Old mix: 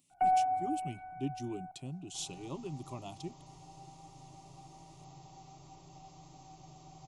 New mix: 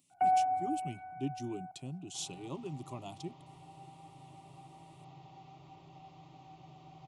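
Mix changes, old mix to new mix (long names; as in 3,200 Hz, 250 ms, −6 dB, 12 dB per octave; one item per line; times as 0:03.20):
second sound: add high shelf with overshoot 4,500 Hz −13.5 dB, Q 1.5
master: add high-pass filter 73 Hz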